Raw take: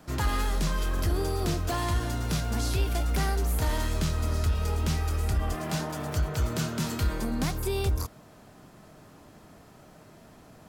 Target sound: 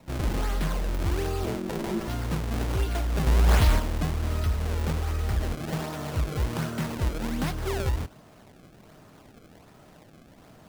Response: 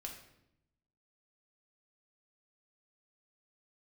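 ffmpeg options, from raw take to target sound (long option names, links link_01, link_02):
-filter_complex "[0:a]asettb=1/sr,asplit=3[link_01][link_02][link_03];[link_01]atrim=end=3.274[link_04];[link_02]atrim=start=3.27:end=3.79,asetpts=PTS-STARTPTS,afade=type=in:duration=0.004:curve=qsin,afade=type=out:start_time=0.516:duration=0.004:curve=qsin,bass=frequency=250:gain=8,treble=frequency=4000:gain=12[link_05];[link_03]atrim=start=3.786[link_06];[link_04][link_05]acrossfade=duration=0.004:curve1=hsin:curve2=qsin[link_07];[link_07][link_06]acrossfade=duration=0.004:curve1=qsin:curve2=hsin,acrusher=samples=27:mix=1:aa=0.000001:lfo=1:lforange=43.2:lforate=1.3,asettb=1/sr,asplit=3[link_08][link_09][link_10];[link_08]atrim=end=1.454[link_11];[link_09]atrim=start=1.45:end=2.08,asetpts=PTS-STARTPTS,afade=type=in:duration=0.004:curve=qsin,afade=type=out:start_time=0.626:duration=0.004:curve=qsin,aeval=exprs='val(0)*sin(2*PI*280*n/s)':channel_layout=same[link_12];[link_10]atrim=start=2.076[link_13];[link_11][link_12]acrossfade=duration=0.004:curve1=hsin:curve2=qsin[link_14];[link_14][link_13]acrossfade=duration=0.004:curve1=qsin:curve2=hsin"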